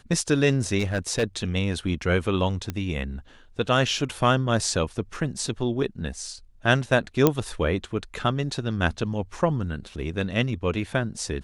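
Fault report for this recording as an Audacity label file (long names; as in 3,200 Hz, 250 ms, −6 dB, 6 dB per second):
0.780000	1.240000	clipping −19 dBFS
2.700000	2.700000	click −15 dBFS
7.270000	7.270000	click −4 dBFS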